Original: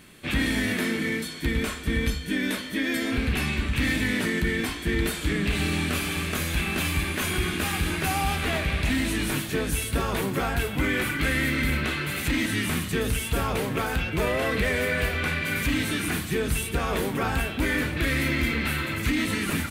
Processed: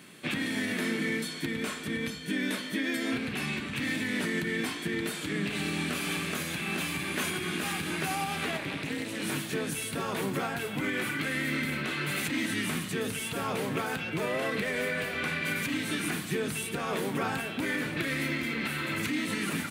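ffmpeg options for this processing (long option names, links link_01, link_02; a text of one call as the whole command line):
ffmpeg -i in.wav -filter_complex "[0:a]asplit=3[link_01][link_02][link_03];[link_01]afade=type=out:start_time=8.56:duration=0.02[link_04];[link_02]tremolo=f=220:d=0.974,afade=type=in:start_time=8.56:duration=0.02,afade=type=out:start_time=9.22:duration=0.02[link_05];[link_03]afade=type=in:start_time=9.22:duration=0.02[link_06];[link_04][link_05][link_06]amix=inputs=3:normalize=0,alimiter=limit=-20.5dB:level=0:latency=1:release=298,highpass=frequency=130:width=0.5412,highpass=frequency=130:width=1.3066,equalizer=frequency=13000:width=6.2:gain=-9" out.wav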